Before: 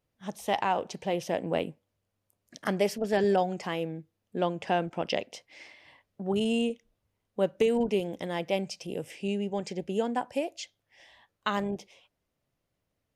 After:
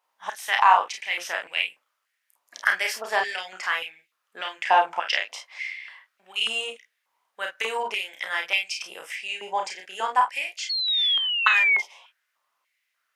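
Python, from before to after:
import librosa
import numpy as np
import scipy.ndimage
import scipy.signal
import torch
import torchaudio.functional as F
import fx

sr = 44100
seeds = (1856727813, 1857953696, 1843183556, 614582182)

y = fx.room_early_taps(x, sr, ms=(32, 49), db=(-4.5, -8.0))
y = fx.spec_paint(y, sr, seeds[0], shape='fall', start_s=10.69, length_s=1.13, low_hz=2100.0, high_hz=4400.0, level_db=-32.0)
y = fx.filter_held_highpass(y, sr, hz=3.4, low_hz=950.0, high_hz=2400.0)
y = F.gain(torch.from_numpy(y), 5.0).numpy()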